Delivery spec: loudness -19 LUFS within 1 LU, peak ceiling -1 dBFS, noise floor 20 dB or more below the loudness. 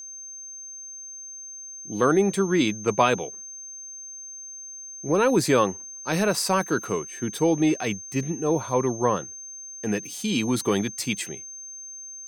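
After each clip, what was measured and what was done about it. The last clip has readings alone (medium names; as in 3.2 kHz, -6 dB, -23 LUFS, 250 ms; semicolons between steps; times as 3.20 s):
steady tone 6.3 kHz; tone level -37 dBFS; loudness -24.5 LUFS; peak level -6.5 dBFS; loudness target -19.0 LUFS
-> band-stop 6.3 kHz, Q 30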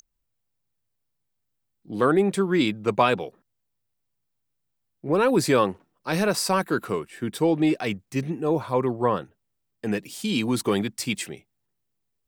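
steady tone not found; loudness -24.5 LUFS; peak level -7.0 dBFS; loudness target -19.0 LUFS
-> trim +5.5 dB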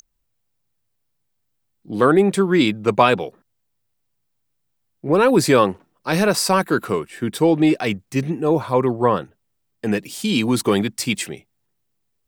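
loudness -19.0 LUFS; peak level -1.5 dBFS; noise floor -72 dBFS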